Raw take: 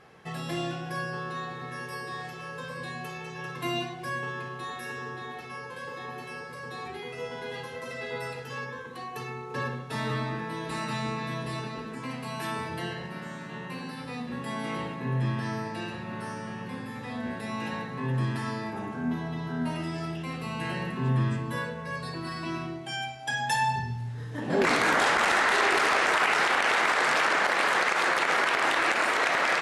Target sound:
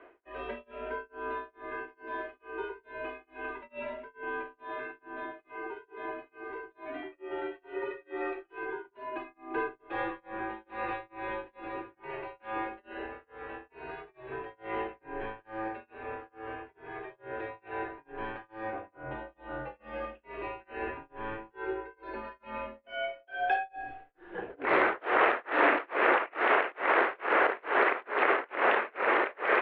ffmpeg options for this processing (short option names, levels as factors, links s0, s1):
-af "lowshelf=f=370:t=q:w=3:g=-10.5,tremolo=f=2.3:d=0.99,highpass=f=150:t=q:w=0.5412,highpass=f=150:t=q:w=1.307,lowpass=f=2900:t=q:w=0.5176,lowpass=f=2900:t=q:w=0.7071,lowpass=f=2900:t=q:w=1.932,afreqshift=-110"